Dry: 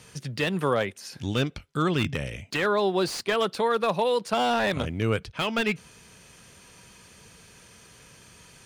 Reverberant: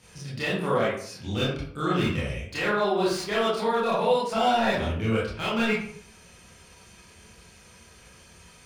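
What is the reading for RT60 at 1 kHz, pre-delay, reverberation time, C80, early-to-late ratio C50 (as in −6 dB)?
0.55 s, 23 ms, 0.60 s, 6.0 dB, 1.0 dB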